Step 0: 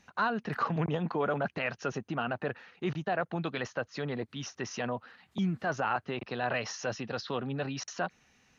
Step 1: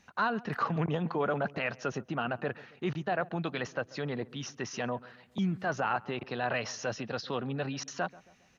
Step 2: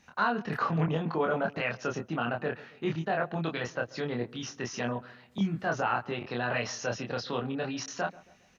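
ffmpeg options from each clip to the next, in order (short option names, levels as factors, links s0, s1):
-filter_complex "[0:a]asplit=2[s0][s1];[s1]adelay=136,lowpass=f=930:p=1,volume=0.112,asplit=2[s2][s3];[s3]adelay=136,lowpass=f=930:p=1,volume=0.51,asplit=2[s4][s5];[s5]adelay=136,lowpass=f=930:p=1,volume=0.51,asplit=2[s6][s7];[s7]adelay=136,lowpass=f=930:p=1,volume=0.51[s8];[s0][s2][s4][s6][s8]amix=inputs=5:normalize=0"
-filter_complex "[0:a]asplit=2[s0][s1];[s1]adelay=25,volume=0.708[s2];[s0][s2]amix=inputs=2:normalize=0"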